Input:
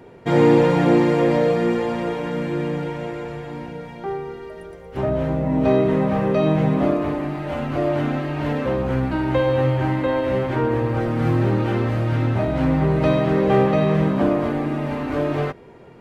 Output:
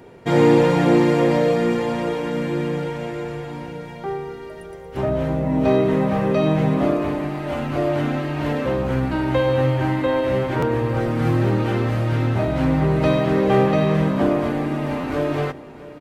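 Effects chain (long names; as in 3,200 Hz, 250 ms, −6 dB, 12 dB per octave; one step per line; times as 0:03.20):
high-shelf EQ 4,200 Hz +6 dB
repeating echo 656 ms, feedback 42%, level −18.5 dB
buffer that repeats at 0:10.59/0:15.00, samples 512, times 2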